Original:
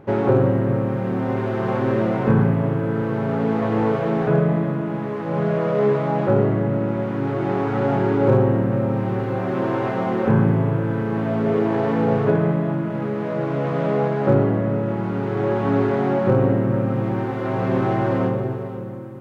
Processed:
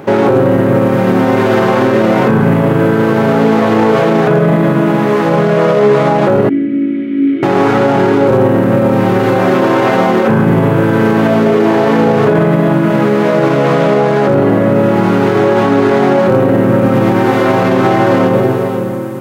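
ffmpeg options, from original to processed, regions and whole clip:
-filter_complex "[0:a]asettb=1/sr,asplit=3[a][b][c];[a]atrim=end=6.494[d];[b]atrim=start=6.49:end=7.43,asetpts=PTS-STARTPTS,afade=t=in:d=0.004:c=qsin,afade=t=out:st=0.936:d=0.004:c=qsin,aecho=1:1:3.1:0.47,atrim=end_sample=41454,adynamicsmooth=sensitivity=1:basefreq=3k,asplit=3[e][f][g];[e]bandpass=f=270:t=q:w=8,volume=0dB[h];[f]bandpass=f=2.29k:t=q:w=8,volume=-6dB[i];[g]bandpass=f=3.01k:t=q:w=8,volume=-9dB[j];[h][i][j]amix=inputs=3:normalize=0[k];[c]atrim=start=7.426[l];[d][k]acrossfade=d=0.004:c1=hsin:c2=qsin[m];[m][l]acrossfade=d=0.004:c1=qsin:c2=hsin,highpass=160,highshelf=f=3.4k:g=12,alimiter=level_in=17dB:limit=-1dB:release=50:level=0:latency=1,volume=-1dB"

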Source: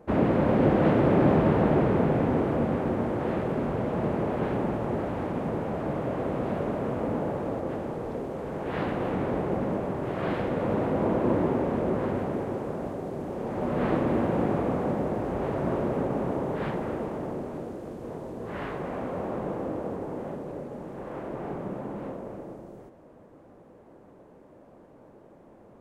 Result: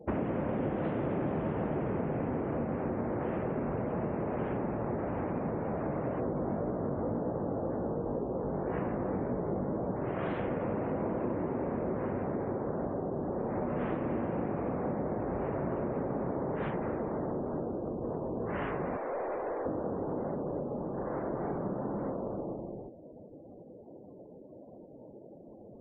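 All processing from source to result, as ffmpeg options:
-filter_complex "[0:a]asettb=1/sr,asplit=3[a][b][c];[a]atrim=end=6.204[d];[b]atrim=start=6.2:end=9.96,asetpts=PTS-STARTPTS,afade=t=in:d=0.004:c=qsin,afade=t=out:st=3.756:d=0.004:c=qsin,lowpass=f=1k:p=1,acontrast=35,flanger=delay=16:depth=5.4:speed=1.9[e];[c]atrim=start=9.956[f];[d][e]acrossfade=d=0.004:c1=hsin:c2=qsin[g];[g][f]acrossfade=d=0.004:c1=qsin:c2=hsin,asettb=1/sr,asplit=3[h][i][j];[h]atrim=end=18.974[k];[i]atrim=start=18.97:end=19.66,asetpts=PTS-STARTPTS,afade=t=in:d=0.004:c=qsin,afade=t=out:st=0.686:d=0.004:c=qsin,highpass=f=370:w=0.5412,highpass=f=370:w=1.3066,aeval=exprs='(tanh(44.7*val(0)+0.1)-tanh(0.1))/44.7':c=same[l];[j]atrim=start=19.656[m];[k][l]acrossfade=d=0.004:c1=hsin:c2=qsin[n];[n][m]acrossfade=d=0.004:c1=qsin:c2=hsin,afftdn=nr=34:nf=-49,acompressor=threshold=-34dB:ratio=6,volume=3.5dB"

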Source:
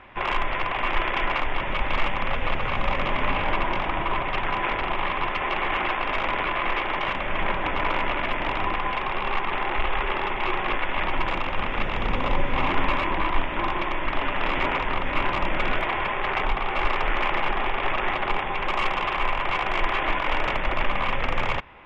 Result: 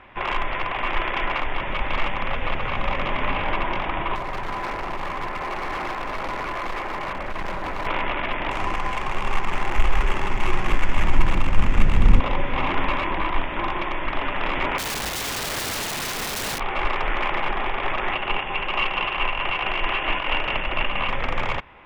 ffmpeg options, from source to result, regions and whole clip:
-filter_complex "[0:a]asettb=1/sr,asplit=3[a][b][c];[a]atrim=end=4.154[d];[b]atrim=start=4.15:end=7.87,asetpts=PTS-STARTPTS,afade=t=in:d=0.004:c=qsin,afade=t=out:st=3.716:d=0.004:c=qsin,lowpass=1.9k,asoftclip=type=hard:threshold=-24dB[e];[c]atrim=start=7.866[f];[d][e]acrossfade=d=0.004:c1=hsin:c2=qsin[g];[g][f]acrossfade=d=0.004:c1=qsin:c2=hsin,asettb=1/sr,asplit=3[h][i][j];[h]atrim=end=8.514[k];[i]atrim=start=8.51:end=12.2,asetpts=PTS-STARTPTS,afade=t=in:d=0.004:c=qsin,afade=t=out:st=3.686:d=0.004:c=qsin,adynamicsmooth=sensitivity=4.5:basefreq=2.1k,asubboost=boost=5.5:cutoff=250[l];[j]atrim=start=12.196[m];[k][l]acrossfade=d=0.004:c1=hsin:c2=qsin[n];[n][m]acrossfade=d=0.004:c1=qsin:c2=hsin,asettb=1/sr,asplit=3[o][p][q];[o]atrim=end=14.784[r];[p]atrim=start=14.78:end=16.6,asetpts=PTS-STARTPTS,afade=t=in:d=0.004:c=qsin,afade=t=out:st=1.816:d=0.004:c=qsin,bandreject=f=1.4k:w=6.4,aeval=exprs='(mod(14.1*val(0)+1,2)-1)/14.1':c=same[s];[q]atrim=start=16.596[t];[r][s]acrossfade=d=0.004:c1=hsin:c2=qsin[u];[u][t]acrossfade=d=0.004:c1=qsin:c2=hsin,asettb=1/sr,asplit=3[v][w][x];[v]atrim=end=18.124[y];[w]atrim=start=18.12:end=21.09,asetpts=PTS-STARTPTS,afade=t=in:d=0.004:c=qsin,afade=t=out:st=2.966:d=0.004:c=qsin,lowpass=4.4k,equalizer=f=2.8k:t=o:w=0.25:g=11.5,tremolo=f=4.5:d=0.29[z];[x]atrim=start=21.086[aa];[y][z]acrossfade=d=0.004:c1=hsin:c2=qsin[ab];[ab][aa]acrossfade=d=0.004:c1=qsin:c2=hsin"

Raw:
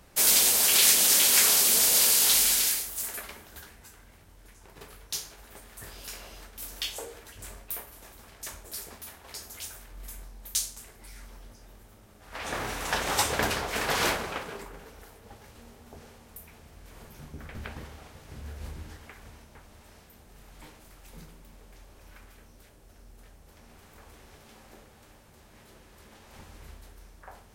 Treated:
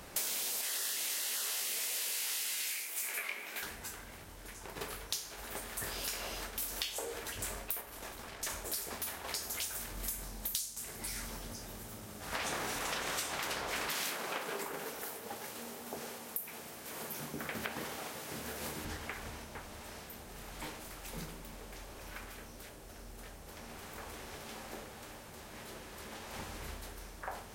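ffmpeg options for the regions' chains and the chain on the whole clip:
-filter_complex "[0:a]asettb=1/sr,asplit=3[a][b][c];[a]atrim=end=0.614[d];[b]atrim=start=0.61:end=3.63,asetpts=PTS-STARTPTS,afade=t=in:d=0.004:c=qsin,afade=t=out:st=3.016:d=0.004:c=qsin,highpass=270,equalizer=f=2.3k:t=o:w=0.5:g=14,flanger=delay=16.5:depth=5.8:speed=1.3[e];[c]atrim=start=3.626[f];[d][e]acrossfade=d=0.004:c1=hsin:c2=qsin[g];[g][f]acrossfade=d=0.004:c1=qsin:c2=hsin,asettb=1/sr,asplit=3[h][i][j];[h]atrim=end=7.814[k];[i]atrim=start=7.81:end=8.5,asetpts=PTS-STARTPTS,afade=t=in:d=0.004:c=qsin,afade=t=out:st=0.686:d=0.004:c=qsin,aeval=exprs='if(lt(val(0),0),0.708*val(0),val(0))':c=same,highshelf=f=7.9k:g=-6.5[l];[j]atrim=start=8.496[m];[k][l]acrossfade=d=0.004:c1=hsin:c2=qsin[n];[n][m]acrossfade=d=0.004:c1=qsin:c2=hsin,asettb=1/sr,asplit=3[o][p][q];[o]atrim=end=9.754[r];[p]atrim=start=9.75:end=12.79,asetpts=PTS-STARTPTS,afade=t=in:d=0.004:c=qsin,afade=t=out:st=3.036:d=0.004:c=qsin,highpass=f=120:p=1,bass=f=250:g=8,treble=f=4k:g=5[s];[q]atrim=start=12.786[t];[r][s]acrossfade=d=0.004:c1=hsin:c2=qsin[u];[u][t]acrossfade=d=0.004:c1=qsin:c2=hsin,asettb=1/sr,asplit=3[v][w][x];[v]atrim=end=13.894[y];[w]atrim=start=13.89:end=18.85,asetpts=PTS-STARTPTS,afade=t=in:d=0.004:c=qsin,afade=t=out:st=4.956:d=0.004:c=qsin,highpass=180,highshelf=f=9.2k:g=9.5[z];[x]atrim=start=18.846[aa];[y][z]acrossfade=d=0.004:c1=hsin:c2=qsin[ab];[ab][aa]acrossfade=d=0.004:c1=qsin:c2=hsin,afftfilt=real='re*lt(hypot(re,im),0.126)':imag='im*lt(hypot(re,im),0.126)':win_size=1024:overlap=0.75,lowshelf=f=150:g=-8,acompressor=threshold=-42dB:ratio=10,volume=7.5dB"

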